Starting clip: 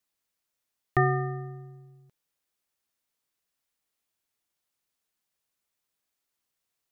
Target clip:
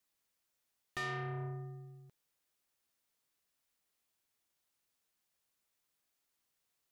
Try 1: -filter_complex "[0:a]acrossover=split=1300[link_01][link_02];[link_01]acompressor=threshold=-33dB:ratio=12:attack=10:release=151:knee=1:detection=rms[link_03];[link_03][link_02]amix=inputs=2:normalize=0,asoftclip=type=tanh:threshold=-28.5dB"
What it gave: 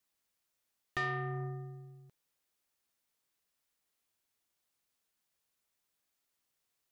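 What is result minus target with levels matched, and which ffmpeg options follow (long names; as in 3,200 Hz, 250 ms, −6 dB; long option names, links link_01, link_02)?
soft clipping: distortion −5 dB
-filter_complex "[0:a]acrossover=split=1300[link_01][link_02];[link_01]acompressor=threshold=-33dB:ratio=12:attack=10:release=151:knee=1:detection=rms[link_03];[link_03][link_02]amix=inputs=2:normalize=0,asoftclip=type=tanh:threshold=-35.5dB"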